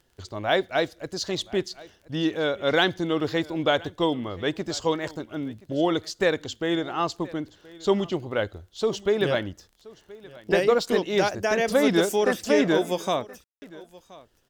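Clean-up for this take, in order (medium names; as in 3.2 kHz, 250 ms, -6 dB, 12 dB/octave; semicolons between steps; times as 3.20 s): de-click; room tone fill 13.44–13.62 s; inverse comb 1025 ms -21.5 dB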